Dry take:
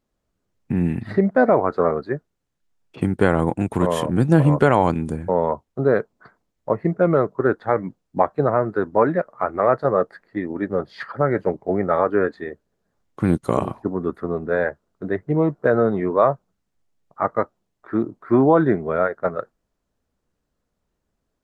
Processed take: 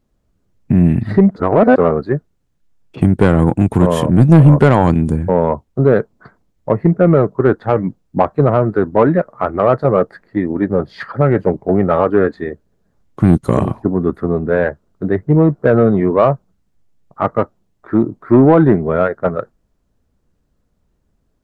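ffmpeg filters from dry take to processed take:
-filter_complex "[0:a]asplit=3[a][b][c];[a]atrim=end=1.362[d];[b]atrim=start=1.358:end=1.762,asetpts=PTS-STARTPTS,areverse[e];[c]atrim=start=1.758[f];[d][e]acrossfade=d=0.004:c1=hsin:c2=hsin[g];[g][f]acrossfade=d=0.004:c1=hsin:c2=hsin,lowshelf=f=300:g=10,acontrast=27,volume=-1dB"

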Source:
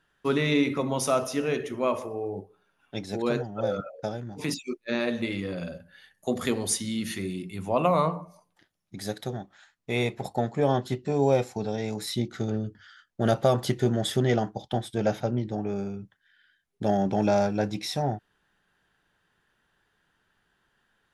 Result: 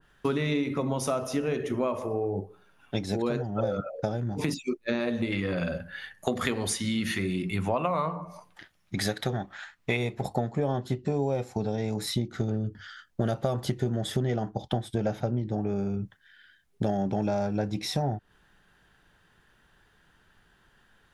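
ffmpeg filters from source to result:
-filter_complex "[0:a]asettb=1/sr,asplit=3[a][b][c];[a]atrim=end=5.324[d];[b]atrim=start=5.32:end=9.97,asetpts=PTS-STARTPTS,afade=t=in:d=0.004:c=qsin,afade=t=out:st=4.646:d=0.004:c=qsin,equalizer=f=1.9k:w=0.52:g=9[e];[c]atrim=start=9.966[f];[d][e]acrossfade=d=0.004:c1=hsin:c2=qsin[g];[g][f]acrossfade=d=0.004:c1=qsin:c2=hsin,lowshelf=f=110:g=8.5,acompressor=threshold=-32dB:ratio=6,adynamicequalizer=threshold=0.002:dfrequency=1700:dqfactor=0.7:tfrequency=1700:tqfactor=0.7:attack=5:release=100:ratio=0.375:range=2:mode=cutabove:tftype=highshelf,volume=7dB"

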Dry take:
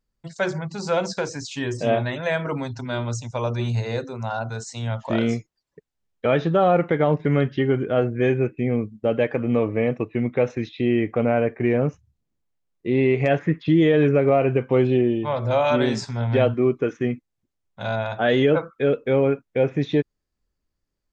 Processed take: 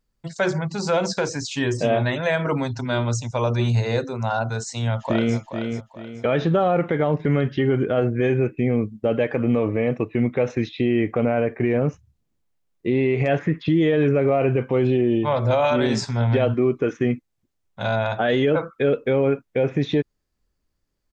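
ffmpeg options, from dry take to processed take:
-filter_complex "[0:a]asplit=2[a][b];[b]afade=t=in:st=4.86:d=0.01,afade=t=out:st=5.37:d=0.01,aecho=0:1:430|860|1290|1720:0.334965|0.117238|0.0410333|0.0143616[c];[a][c]amix=inputs=2:normalize=0,alimiter=limit=-15dB:level=0:latency=1:release=45,volume=4dB"

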